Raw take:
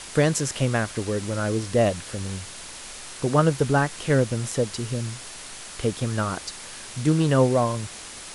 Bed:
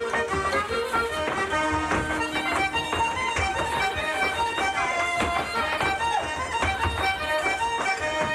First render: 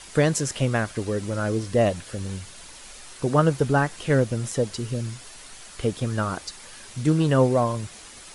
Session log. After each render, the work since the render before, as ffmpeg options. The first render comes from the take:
-af "afftdn=nr=7:nf=-40"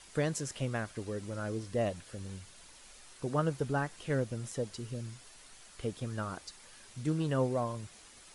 -af "volume=0.266"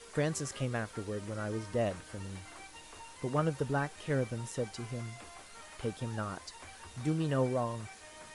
-filter_complex "[1:a]volume=0.0447[s0];[0:a][s0]amix=inputs=2:normalize=0"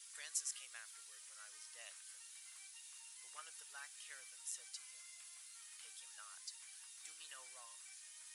-af "highpass=1300,aderivative"

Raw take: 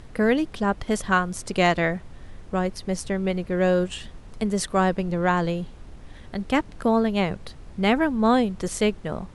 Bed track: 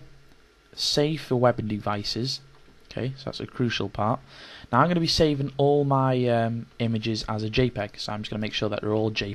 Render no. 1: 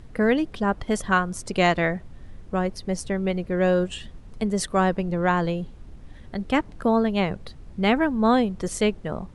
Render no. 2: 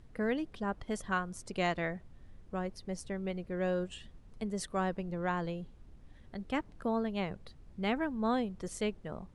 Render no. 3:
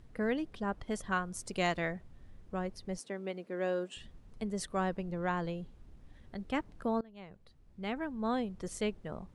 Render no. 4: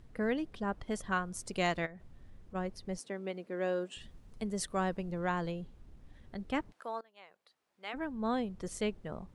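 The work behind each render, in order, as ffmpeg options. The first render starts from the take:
-af "afftdn=nr=6:nf=-44"
-af "volume=0.251"
-filter_complex "[0:a]asettb=1/sr,asplit=3[s0][s1][s2];[s0]atrim=end=1.344[s3];[s1]atrim=start=1.34:end=1.92,asetpts=PTS-STARTPTS,afade=t=in:d=0.004:c=qsin,afade=t=out:st=0.576:d=0.004:c=qsin,highshelf=f=5200:g=7.5[s4];[s2]atrim=start=1.916[s5];[s3][s4]acrossfade=d=0.004:c1=hsin:c2=qsin[s6];[s6][s5]acrossfade=d=0.004:c1=qsin:c2=hsin,asettb=1/sr,asplit=3[s7][s8][s9];[s7]atrim=end=2.984[s10];[s8]atrim=start=2.98:end=3.97,asetpts=PTS-STARTPTS,afade=t=in:d=0.004:c=qsin,afade=t=out:st=0.986:d=0.004:c=qsin,highpass=f=220:w=0.5412,highpass=f=220:w=1.3066[s11];[s9]atrim=start=3.966[s12];[s10][s11]acrossfade=d=0.004:c1=hsin:c2=qsin[s13];[s13][s12]acrossfade=d=0.004:c1=qsin:c2=hsin,asplit=2[s14][s15];[s14]atrim=end=7.01,asetpts=PTS-STARTPTS,afade=t=out:st=7.006:d=0.004:c=hsin:silence=0.0707946[s16];[s15]atrim=start=7.01,asetpts=PTS-STARTPTS,afade=t=in:d=1.66:silence=0.0707946[s17];[s16][s17]concat=n=2:v=0:a=1"
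-filter_complex "[0:a]asplit=3[s0][s1][s2];[s0]afade=t=out:st=1.85:d=0.02[s3];[s1]acompressor=threshold=0.00501:ratio=5:attack=3.2:release=140:knee=1:detection=peak,afade=t=in:st=1.85:d=0.02,afade=t=out:st=2.54:d=0.02[s4];[s2]afade=t=in:st=2.54:d=0.02[s5];[s3][s4][s5]amix=inputs=3:normalize=0,asettb=1/sr,asplit=3[s6][s7][s8];[s6]atrim=end=4.014[s9];[s7]atrim=start=4.01:end=5.52,asetpts=PTS-STARTPTS,afade=t=in:d=0.004:c=qsin,afade=t=out:st=1.506:d=0.004:c=qsin,highshelf=f=5000:g=5[s10];[s8]atrim=start=5.516[s11];[s9][s10]acrossfade=d=0.004:c1=hsin:c2=qsin[s12];[s12][s11]acrossfade=d=0.004:c1=qsin:c2=hsin,asplit=3[s13][s14][s15];[s13]afade=t=out:st=6.71:d=0.02[s16];[s14]highpass=740,afade=t=in:st=6.71:d=0.02,afade=t=out:st=7.93:d=0.02[s17];[s15]afade=t=in:st=7.93:d=0.02[s18];[s16][s17][s18]amix=inputs=3:normalize=0"

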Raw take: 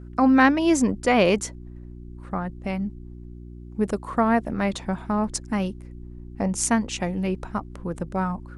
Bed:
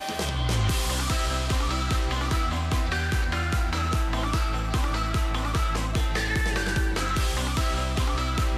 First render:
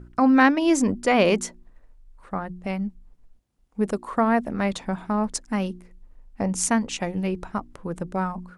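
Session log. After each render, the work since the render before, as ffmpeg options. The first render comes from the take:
-af "bandreject=f=60:t=h:w=4,bandreject=f=120:t=h:w=4,bandreject=f=180:t=h:w=4,bandreject=f=240:t=h:w=4,bandreject=f=300:t=h:w=4,bandreject=f=360:t=h:w=4"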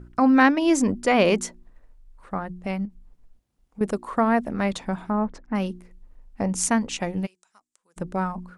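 -filter_complex "[0:a]asettb=1/sr,asplit=3[s0][s1][s2];[s0]atrim=end=2.854[s3];[s1]atrim=start=2.85:end=3.81,asetpts=PTS-STARTPTS,afade=t=in:d=0.004:c=qsin,afade=t=out:st=0.956:d=0.004:c=qsin,acompressor=threshold=0.0178:ratio=5:attack=3.2:release=140:knee=1:detection=peak[s4];[s2]atrim=start=3.806[s5];[s3][s4]acrossfade=d=0.004:c1=hsin:c2=qsin[s6];[s6][s5]acrossfade=d=0.004:c1=qsin:c2=hsin,asplit=3[s7][s8][s9];[s7]afade=t=out:st=5.09:d=0.02[s10];[s8]lowpass=1800,afade=t=in:st=5.09:d=0.02,afade=t=out:st=5.54:d=0.02[s11];[s9]afade=t=in:st=5.54:d=0.02[s12];[s10][s11][s12]amix=inputs=3:normalize=0,asplit=3[s13][s14][s15];[s13]afade=t=out:st=7.25:d=0.02[s16];[s14]bandpass=f=7600:t=q:w=2.8,afade=t=in:st=7.25:d=0.02,afade=t=out:st=7.96:d=0.02[s17];[s15]afade=t=in:st=7.96:d=0.02[s18];[s16][s17][s18]amix=inputs=3:normalize=0"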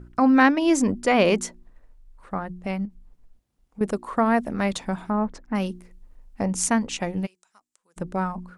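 -filter_complex "[0:a]asettb=1/sr,asplit=3[s0][s1][s2];[s0]atrim=end=4.254[s3];[s1]atrim=start=4.25:end=6.45,asetpts=PTS-STARTPTS,afade=t=in:d=0.004:c=qsin,afade=t=out:st=2.196:d=0.004:c=qsin,highshelf=f=4300:g=5[s4];[s2]atrim=start=6.446[s5];[s3][s4]acrossfade=d=0.004:c1=hsin:c2=qsin[s6];[s6][s5]acrossfade=d=0.004:c1=qsin:c2=hsin"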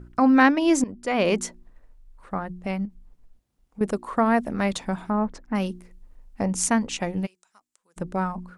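-filter_complex "[0:a]asplit=2[s0][s1];[s0]atrim=end=0.84,asetpts=PTS-STARTPTS,afade=t=out:st=0.836:d=0.004:c=hsin:silence=0.141254[s2];[s1]atrim=start=0.84,asetpts=PTS-STARTPTS,afade=t=in:d=0.61:silence=0.141254[s3];[s2][s3]concat=n=2:v=0:a=1"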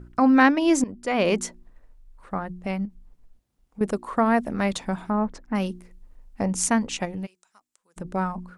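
-filter_complex "[0:a]asettb=1/sr,asplit=3[s0][s1][s2];[s0]atrim=end=7.054[s3];[s1]atrim=start=7.05:end=8.05,asetpts=PTS-STARTPTS,afade=t=in:d=0.004:c=qsin,afade=t=out:st=0.996:d=0.004:c=qsin,acompressor=threshold=0.0355:ratio=4:attack=3.2:release=140:knee=1:detection=peak[s4];[s2]atrim=start=8.046[s5];[s3][s4]acrossfade=d=0.004:c1=hsin:c2=qsin[s6];[s6][s5]acrossfade=d=0.004:c1=qsin:c2=hsin"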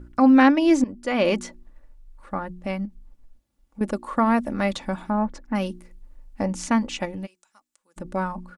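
-filter_complex "[0:a]acrossover=split=5100[s0][s1];[s1]acompressor=threshold=0.00794:ratio=4:attack=1:release=60[s2];[s0][s2]amix=inputs=2:normalize=0,aecho=1:1:3.5:0.45"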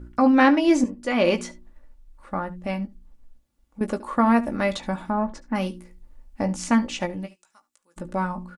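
-filter_complex "[0:a]asplit=2[s0][s1];[s1]adelay=17,volume=0.398[s2];[s0][s2]amix=inputs=2:normalize=0,aecho=1:1:72:0.106"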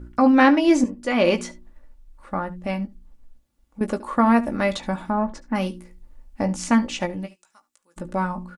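-af "volume=1.19"

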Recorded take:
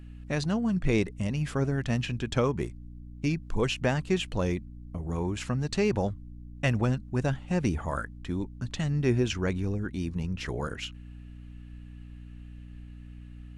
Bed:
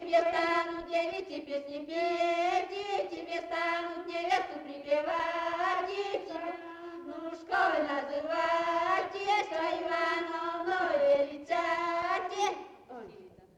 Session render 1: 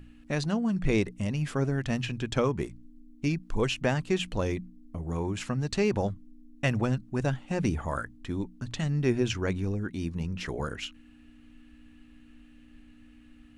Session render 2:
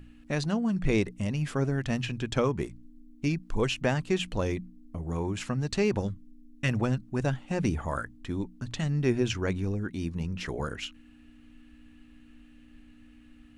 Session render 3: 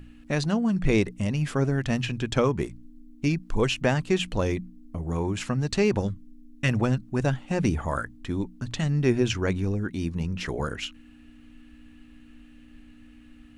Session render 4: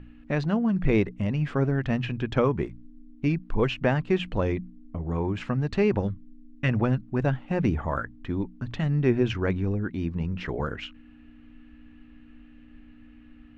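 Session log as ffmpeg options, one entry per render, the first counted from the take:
-af "bandreject=f=60:t=h:w=6,bandreject=f=120:t=h:w=6,bandreject=f=180:t=h:w=6"
-filter_complex "[0:a]asettb=1/sr,asplit=3[s0][s1][s2];[s0]atrim=end=5.994[s3];[s1]atrim=start=5.99:end=6.69,asetpts=PTS-STARTPTS,afade=t=in:d=0.004:c=qsin,afade=t=out:st=0.696:d=0.004:c=qsin,equalizer=f=700:w=1.9:g=-14.5[s4];[s2]atrim=start=6.686[s5];[s3][s4]acrossfade=d=0.004:c1=hsin:c2=qsin[s6];[s6][s5]acrossfade=d=0.004:c1=qsin:c2=hsin"
-af "volume=1.5"
-af "lowpass=2500"

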